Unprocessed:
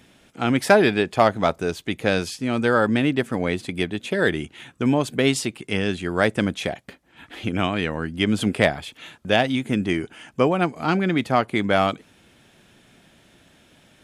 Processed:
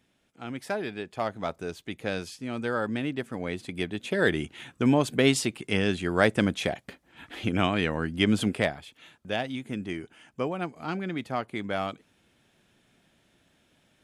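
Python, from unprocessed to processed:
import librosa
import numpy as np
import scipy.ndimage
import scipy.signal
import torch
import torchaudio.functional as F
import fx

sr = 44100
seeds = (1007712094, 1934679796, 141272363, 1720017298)

y = fx.gain(x, sr, db=fx.line((0.85, -16.0), (1.63, -10.0), (3.33, -10.0), (4.41, -2.0), (8.33, -2.0), (8.82, -11.0)))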